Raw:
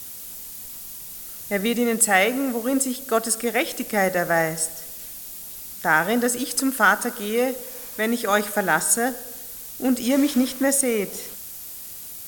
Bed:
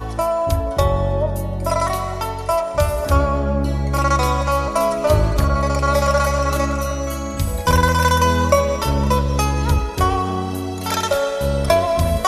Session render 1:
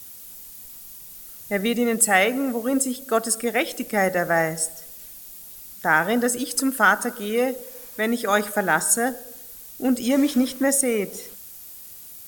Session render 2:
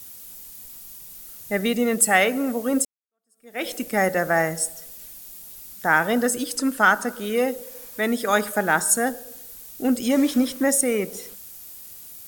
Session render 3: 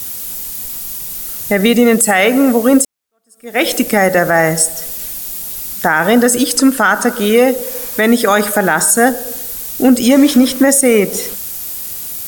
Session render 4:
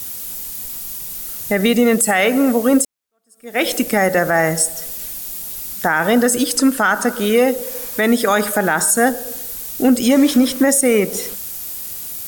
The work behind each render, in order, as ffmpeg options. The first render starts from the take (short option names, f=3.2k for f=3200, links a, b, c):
-af "afftdn=nr=6:nf=-37"
-filter_complex "[0:a]asettb=1/sr,asplit=3[a][b][c];[a]atrim=end=6.534[d];[b]atrim=start=6.53:end=7.24,asetpts=PTS-STARTPTS,afade=t=in:d=0.004:c=qsin,afade=t=out:st=0.706:d=0.004:c=qsin,acrossover=split=7900[e][f];[f]acompressor=threshold=-39dB:ratio=4:attack=1:release=60[g];[e][g]amix=inputs=2:normalize=0[h];[c]atrim=start=7.236[i];[d][h]acrossfade=d=0.004:c1=hsin:c2=qsin[j];[j][i]acrossfade=d=0.004:c1=qsin:c2=hsin,asplit=2[k][l];[k]atrim=end=2.85,asetpts=PTS-STARTPTS,afade=t=out:st=2.846:d=0.004:c=hsin[m];[l]atrim=start=2.85,asetpts=PTS-STARTPTS,afade=t=in:d=0.8:c=exp[n];[m][n]concat=n=2:v=0:a=1"
-filter_complex "[0:a]asplit=2[a][b];[b]acompressor=threshold=-29dB:ratio=6,volume=-0.5dB[c];[a][c]amix=inputs=2:normalize=0,alimiter=level_in=11dB:limit=-1dB:release=50:level=0:latency=1"
-af "volume=-4dB"